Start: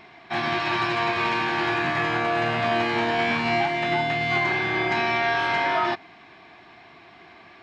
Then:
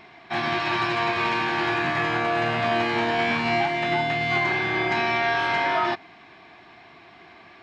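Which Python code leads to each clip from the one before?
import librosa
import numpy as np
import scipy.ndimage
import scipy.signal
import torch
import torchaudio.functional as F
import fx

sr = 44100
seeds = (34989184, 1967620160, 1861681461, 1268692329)

y = x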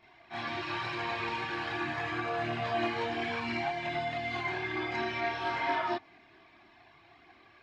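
y = fx.chorus_voices(x, sr, voices=6, hz=0.73, base_ms=28, depth_ms=2.0, mix_pct=65)
y = y * librosa.db_to_amplitude(-7.5)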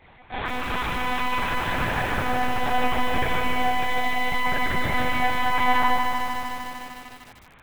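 y = np.repeat(x[::6], 6)[:len(x)]
y = fx.lpc_monotone(y, sr, seeds[0], pitch_hz=250.0, order=8)
y = fx.echo_crushed(y, sr, ms=151, feedback_pct=80, bits=8, wet_db=-5.5)
y = y * librosa.db_to_amplitude(8.5)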